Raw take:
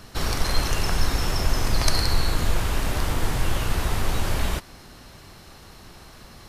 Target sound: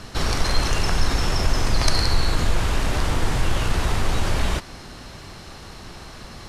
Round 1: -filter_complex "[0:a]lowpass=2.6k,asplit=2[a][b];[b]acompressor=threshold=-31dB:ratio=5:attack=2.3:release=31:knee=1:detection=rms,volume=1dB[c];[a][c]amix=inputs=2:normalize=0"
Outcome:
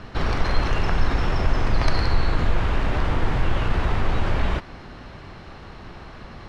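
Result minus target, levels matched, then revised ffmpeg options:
8000 Hz band -15.0 dB
-filter_complex "[0:a]lowpass=8.9k,asplit=2[a][b];[b]acompressor=threshold=-31dB:ratio=5:attack=2.3:release=31:knee=1:detection=rms,volume=1dB[c];[a][c]amix=inputs=2:normalize=0"

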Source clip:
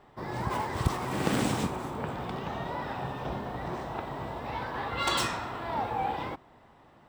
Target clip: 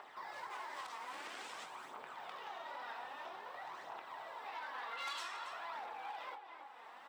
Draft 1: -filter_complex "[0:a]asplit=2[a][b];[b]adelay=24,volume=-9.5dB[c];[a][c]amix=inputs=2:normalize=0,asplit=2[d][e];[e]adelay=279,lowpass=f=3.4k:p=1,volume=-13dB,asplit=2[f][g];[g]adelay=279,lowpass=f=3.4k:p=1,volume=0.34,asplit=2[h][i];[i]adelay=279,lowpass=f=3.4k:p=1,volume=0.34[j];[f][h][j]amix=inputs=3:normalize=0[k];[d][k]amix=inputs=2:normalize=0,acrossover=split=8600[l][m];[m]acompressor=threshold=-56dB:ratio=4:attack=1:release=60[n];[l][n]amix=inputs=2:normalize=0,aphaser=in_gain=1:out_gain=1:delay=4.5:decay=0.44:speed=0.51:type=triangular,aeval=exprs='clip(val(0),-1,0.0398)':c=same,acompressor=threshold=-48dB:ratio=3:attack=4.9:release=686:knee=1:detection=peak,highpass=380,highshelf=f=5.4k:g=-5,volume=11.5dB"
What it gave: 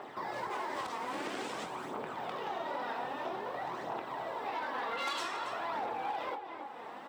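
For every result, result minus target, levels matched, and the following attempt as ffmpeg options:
compressor: peak gain reduction -5.5 dB; 500 Hz band +5.5 dB
-filter_complex "[0:a]asplit=2[a][b];[b]adelay=24,volume=-9.5dB[c];[a][c]amix=inputs=2:normalize=0,asplit=2[d][e];[e]adelay=279,lowpass=f=3.4k:p=1,volume=-13dB,asplit=2[f][g];[g]adelay=279,lowpass=f=3.4k:p=1,volume=0.34,asplit=2[h][i];[i]adelay=279,lowpass=f=3.4k:p=1,volume=0.34[j];[f][h][j]amix=inputs=3:normalize=0[k];[d][k]amix=inputs=2:normalize=0,acrossover=split=8600[l][m];[m]acompressor=threshold=-56dB:ratio=4:attack=1:release=60[n];[l][n]amix=inputs=2:normalize=0,aphaser=in_gain=1:out_gain=1:delay=4.5:decay=0.44:speed=0.51:type=triangular,aeval=exprs='clip(val(0),-1,0.0398)':c=same,acompressor=threshold=-56.5dB:ratio=3:attack=4.9:release=686:knee=1:detection=peak,highpass=380,highshelf=f=5.4k:g=-5,volume=11.5dB"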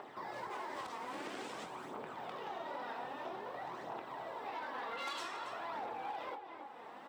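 500 Hz band +5.5 dB
-filter_complex "[0:a]asplit=2[a][b];[b]adelay=24,volume=-9.5dB[c];[a][c]amix=inputs=2:normalize=0,asplit=2[d][e];[e]adelay=279,lowpass=f=3.4k:p=1,volume=-13dB,asplit=2[f][g];[g]adelay=279,lowpass=f=3.4k:p=1,volume=0.34,asplit=2[h][i];[i]adelay=279,lowpass=f=3.4k:p=1,volume=0.34[j];[f][h][j]amix=inputs=3:normalize=0[k];[d][k]amix=inputs=2:normalize=0,acrossover=split=8600[l][m];[m]acompressor=threshold=-56dB:ratio=4:attack=1:release=60[n];[l][n]amix=inputs=2:normalize=0,aphaser=in_gain=1:out_gain=1:delay=4.5:decay=0.44:speed=0.51:type=triangular,aeval=exprs='clip(val(0),-1,0.0398)':c=same,acompressor=threshold=-56.5dB:ratio=3:attack=4.9:release=686:knee=1:detection=peak,highpass=920,highshelf=f=5.4k:g=-5,volume=11.5dB"

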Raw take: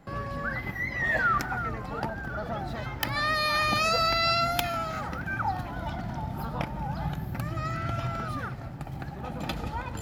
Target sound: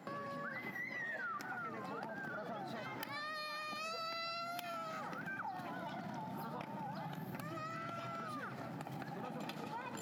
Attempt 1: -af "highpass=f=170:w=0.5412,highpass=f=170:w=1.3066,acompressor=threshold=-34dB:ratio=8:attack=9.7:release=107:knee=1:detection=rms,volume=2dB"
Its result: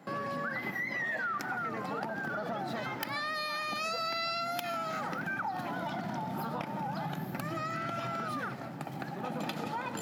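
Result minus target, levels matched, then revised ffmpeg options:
compressor: peak gain reduction -9 dB
-af "highpass=f=170:w=0.5412,highpass=f=170:w=1.3066,acompressor=threshold=-44dB:ratio=8:attack=9.7:release=107:knee=1:detection=rms,volume=2dB"

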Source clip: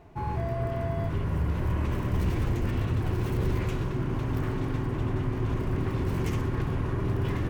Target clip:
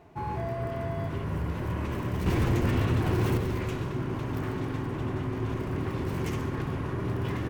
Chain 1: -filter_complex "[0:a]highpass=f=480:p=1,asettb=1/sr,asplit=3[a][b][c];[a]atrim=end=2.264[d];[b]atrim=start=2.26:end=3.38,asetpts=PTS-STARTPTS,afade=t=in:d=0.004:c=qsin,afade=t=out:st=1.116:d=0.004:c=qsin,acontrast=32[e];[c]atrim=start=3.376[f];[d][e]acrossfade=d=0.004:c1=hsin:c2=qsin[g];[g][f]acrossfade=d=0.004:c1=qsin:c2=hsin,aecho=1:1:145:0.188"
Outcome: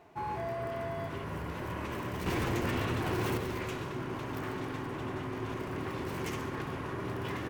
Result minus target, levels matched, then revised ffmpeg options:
125 Hz band -4.0 dB
-filter_complex "[0:a]highpass=f=120:p=1,asettb=1/sr,asplit=3[a][b][c];[a]atrim=end=2.264[d];[b]atrim=start=2.26:end=3.38,asetpts=PTS-STARTPTS,afade=t=in:d=0.004:c=qsin,afade=t=out:st=1.116:d=0.004:c=qsin,acontrast=32[e];[c]atrim=start=3.376[f];[d][e]acrossfade=d=0.004:c1=hsin:c2=qsin[g];[g][f]acrossfade=d=0.004:c1=qsin:c2=hsin,aecho=1:1:145:0.188"

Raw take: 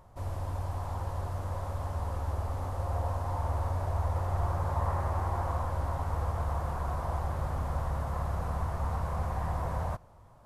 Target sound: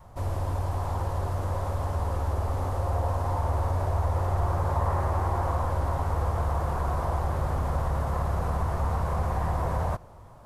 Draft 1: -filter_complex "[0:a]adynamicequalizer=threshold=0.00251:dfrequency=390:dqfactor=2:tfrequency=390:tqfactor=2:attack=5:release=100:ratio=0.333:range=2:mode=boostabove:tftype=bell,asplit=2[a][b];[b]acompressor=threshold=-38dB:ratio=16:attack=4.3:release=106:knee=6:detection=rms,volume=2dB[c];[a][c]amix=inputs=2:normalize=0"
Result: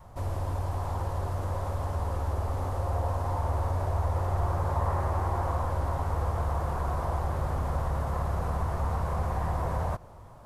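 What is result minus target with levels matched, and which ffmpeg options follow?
compressor: peak gain reduction +6.5 dB
-filter_complex "[0:a]adynamicequalizer=threshold=0.00251:dfrequency=390:dqfactor=2:tfrequency=390:tqfactor=2:attack=5:release=100:ratio=0.333:range=2:mode=boostabove:tftype=bell,asplit=2[a][b];[b]acompressor=threshold=-31dB:ratio=16:attack=4.3:release=106:knee=6:detection=rms,volume=2dB[c];[a][c]amix=inputs=2:normalize=0"

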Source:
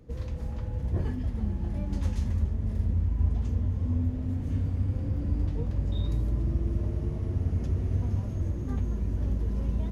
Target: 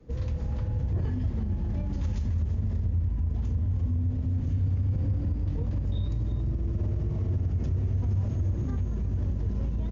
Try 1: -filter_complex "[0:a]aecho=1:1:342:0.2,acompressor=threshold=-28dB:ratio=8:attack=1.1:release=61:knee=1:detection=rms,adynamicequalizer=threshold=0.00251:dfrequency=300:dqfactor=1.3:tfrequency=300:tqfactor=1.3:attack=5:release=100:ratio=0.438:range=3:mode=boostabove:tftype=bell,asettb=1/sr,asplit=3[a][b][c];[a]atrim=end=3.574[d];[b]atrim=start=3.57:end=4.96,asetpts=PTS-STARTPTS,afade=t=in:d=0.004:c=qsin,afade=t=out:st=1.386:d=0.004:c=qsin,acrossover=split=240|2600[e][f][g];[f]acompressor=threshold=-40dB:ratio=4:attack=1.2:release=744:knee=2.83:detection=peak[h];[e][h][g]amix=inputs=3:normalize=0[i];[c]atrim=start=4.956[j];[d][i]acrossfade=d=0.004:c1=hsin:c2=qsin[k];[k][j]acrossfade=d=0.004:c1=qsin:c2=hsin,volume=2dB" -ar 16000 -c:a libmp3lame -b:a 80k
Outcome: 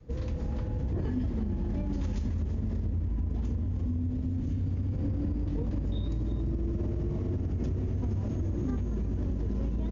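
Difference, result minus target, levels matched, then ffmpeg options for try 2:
250 Hz band +5.5 dB
-filter_complex "[0:a]aecho=1:1:342:0.2,acompressor=threshold=-28dB:ratio=8:attack=1.1:release=61:knee=1:detection=rms,adynamicequalizer=threshold=0.00251:dfrequency=100:dqfactor=1.3:tfrequency=100:tqfactor=1.3:attack=5:release=100:ratio=0.438:range=3:mode=boostabove:tftype=bell,asettb=1/sr,asplit=3[a][b][c];[a]atrim=end=3.574[d];[b]atrim=start=3.57:end=4.96,asetpts=PTS-STARTPTS,afade=t=in:d=0.004:c=qsin,afade=t=out:st=1.386:d=0.004:c=qsin,acrossover=split=240|2600[e][f][g];[f]acompressor=threshold=-40dB:ratio=4:attack=1.2:release=744:knee=2.83:detection=peak[h];[e][h][g]amix=inputs=3:normalize=0[i];[c]atrim=start=4.956[j];[d][i]acrossfade=d=0.004:c1=hsin:c2=qsin[k];[k][j]acrossfade=d=0.004:c1=qsin:c2=hsin,volume=2dB" -ar 16000 -c:a libmp3lame -b:a 80k

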